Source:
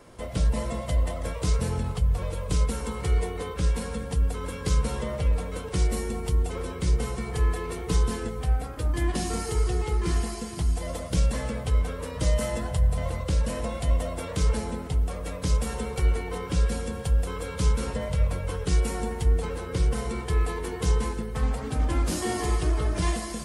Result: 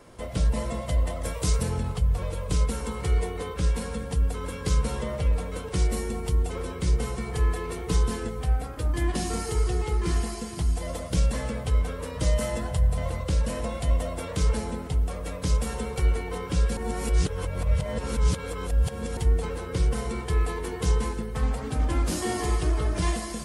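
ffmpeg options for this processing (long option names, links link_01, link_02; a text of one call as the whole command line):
ffmpeg -i in.wav -filter_complex "[0:a]asettb=1/sr,asplit=3[link_01][link_02][link_03];[link_01]atrim=end=1.234[link_04];[link_02]atrim=start=1.23:end=1.63,asetpts=PTS-STARTPTS,afade=type=in:duration=0.004:curve=qsin,afade=type=out:start_time=0.396:duration=0.004:curve=qsin,highshelf=frequency=6600:gain=10[link_05];[link_03]atrim=start=1.626[link_06];[link_04][link_05]acrossfade=duration=0.004:curve1=hsin:curve2=qsin[link_07];[link_07][link_06]acrossfade=duration=0.004:curve1=qsin:curve2=hsin,asplit=3[link_08][link_09][link_10];[link_08]atrim=end=16.772[link_11];[link_09]atrim=start=16.768:end=19.172,asetpts=PTS-STARTPTS,areverse[link_12];[link_10]atrim=start=19.168[link_13];[link_11][link_12]acrossfade=duration=0.004:curve1=hsin:curve2=hsin[link_14];[link_14][link_13]acrossfade=duration=0.004:curve1=hsin:curve2=hsin" out.wav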